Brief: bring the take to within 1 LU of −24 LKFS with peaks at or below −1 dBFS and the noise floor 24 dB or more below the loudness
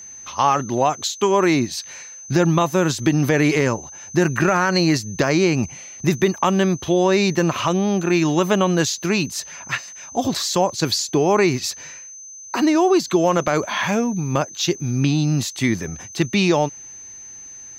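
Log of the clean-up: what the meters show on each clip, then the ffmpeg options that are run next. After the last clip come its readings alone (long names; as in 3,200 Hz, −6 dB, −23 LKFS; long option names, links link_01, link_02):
interfering tone 6,200 Hz; level of the tone −36 dBFS; integrated loudness −19.5 LKFS; sample peak −6.0 dBFS; target loudness −24.0 LKFS
→ -af "bandreject=frequency=6200:width=30"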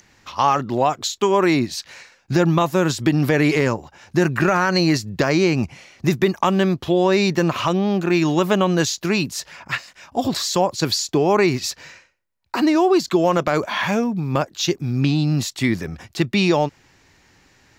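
interfering tone none found; integrated loudness −19.5 LKFS; sample peak −6.0 dBFS; target loudness −24.0 LKFS
→ -af "volume=-4.5dB"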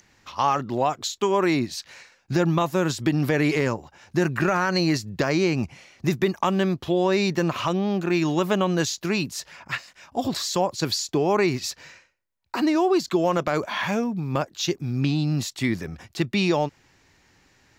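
integrated loudness −24.0 LKFS; sample peak −10.5 dBFS; background noise floor −62 dBFS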